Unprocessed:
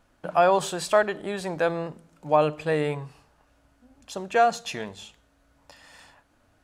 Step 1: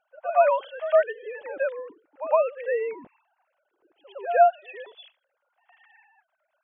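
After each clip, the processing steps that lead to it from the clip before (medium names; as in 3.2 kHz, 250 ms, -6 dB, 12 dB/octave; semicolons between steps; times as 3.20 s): formants replaced by sine waves; pre-echo 111 ms -13 dB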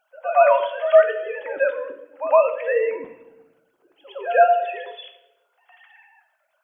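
treble shelf 3 kHz +8.5 dB; on a send at -5.5 dB: reverberation RT60 0.95 s, pre-delay 3 ms; on the sum: trim +3.5 dB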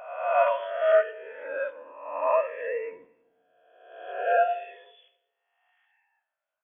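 reverse spectral sustain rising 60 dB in 1.44 s; upward expansion 1.5:1, over -34 dBFS; trim -8.5 dB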